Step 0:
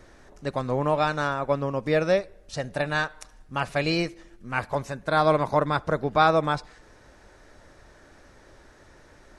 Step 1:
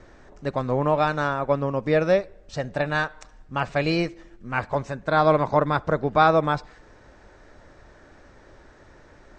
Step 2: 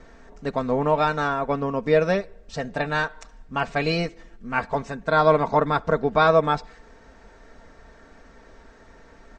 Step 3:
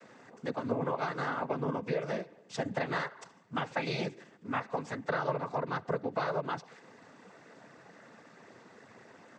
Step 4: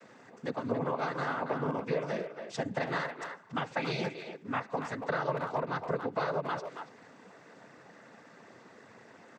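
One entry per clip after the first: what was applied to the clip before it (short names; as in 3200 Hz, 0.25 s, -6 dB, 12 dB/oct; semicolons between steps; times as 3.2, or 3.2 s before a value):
steep low-pass 8400 Hz 96 dB/oct; high shelf 3600 Hz -8 dB; gain +2.5 dB
comb 4.4 ms, depth 57%
compressor 12:1, threshold -26 dBFS, peak gain reduction 14.5 dB; noise vocoder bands 16; gain -2.5 dB
speakerphone echo 0.28 s, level -7 dB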